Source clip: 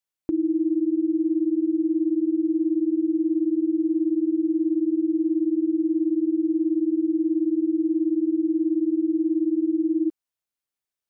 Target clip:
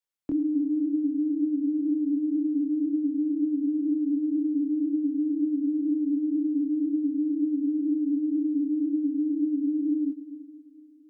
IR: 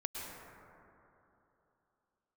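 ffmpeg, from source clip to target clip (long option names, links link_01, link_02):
-filter_complex "[0:a]afreqshift=-25,flanger=delay=19:depth=7.4:speed=2,asplit=2[link_01][link_02];[1:a]atrim=start_sample=2205,lowshelf=frequency=290:gain=-8.5,adelay=111[link_03];[link_02][link_03]afir=irnorm=-1:irlink=0,volume=-12dB[link_04];[link_01][link_04]amix=inputs=2:normalize=0"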